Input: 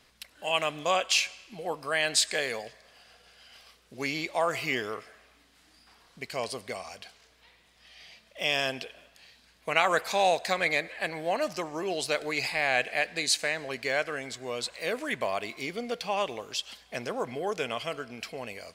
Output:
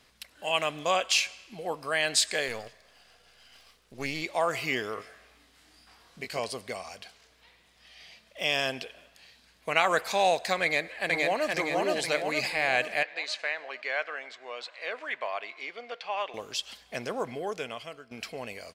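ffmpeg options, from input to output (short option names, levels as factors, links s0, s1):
-filter_complex "[0:a]asettb=1/sr,asplit=3[s0][s1][s2];[s0]atrim=end=2.484[s3];[s1]atrim=start=2.48:end=4.22,asetpts=PTS-STARTPTS,afade=t=in:d=0.004:c=qsin,afade=t=out:st=1.736:d=0.004:c=qsin,aeval=exprs='if(lt(val(0),0),0.447*val(0),val(0))':c=same[s4];[s2]atrim=start=4.216[s5];[s3][s4]acrossfade=d=0.004:c1=hsin:c2=qsin[s6];[s6][s5]acrossfade=d=0.004:c1=qsin:c2=hsin,asettb=1/sr,asplit=3[s7][s8][s9];[s7]atrim=end=4.954[s10];[s8]atrim=start=4.95:end=6.39,asetpts=PTS-STARTPTS,afade=t=in:d=0.004:c=qsin,afade=t=out:st=1.436:d=0.004:c=qsin,asplit=2[s11][s12];[s12]adelay=20,volume=0.631[s13];[s11][s13]amix=inputs=2:normalize=0,atrim=end_sample=63504[s14];[s9]atrim=start=6.386[s15];[s10][s14]acrossfade=d=0.004:c1=hsin:c2=qsin[s16];[s16][s15]acrossfade=d=0.004:c1=qsin:c2=hsin,asplit=2[s17][s18];[s18]afade=t=in:st=10.62:d=0.01,afade=t=out:st=11.51:d=0.01,aecho=0:1:470|940|1410|1880|2350|2820|3290|3760:0.891251|0.490188|0.269603|0.148282|0.081555|0.0448553|0.0246704|0.0135687[s19];[s17][s19]amix=inputs=2:normalize=0,asettb=1/sr,asplit=3[s20][s21][s22];[s20]atrim=end=13.034[s23];[s21]atrim=start=13.03:end=16.34,asetpts=PTS-STARTPTS,afade=t=in:d=0.004:c=qsin,afade=t=out:st=3.306:d=0.004:c=qsin,highpass=710,lowpass=3000[s24];[s22]atrim=start=16.336[s25];[s23][s24]acrossfade=d=0.004:c1=hsin:c2=qsin[s26];[s26][s25]acrossfade=d=0.004:c1=qsin:c2=hsin,asplit=2[s27][s28];[s27]atrim=end=18.11,asetpts=PTS-STARTPTS,afade=t=out:st=17.21:d=0.9:silence=0.199526[s29];[s28]atrim=start=18.11,asetpts=PTS-STARTPTS,afade=t=in:d=0.004:c=hsin:silence=0.199526[s30];[s29][s30]concat=n=2:v=0:a=1"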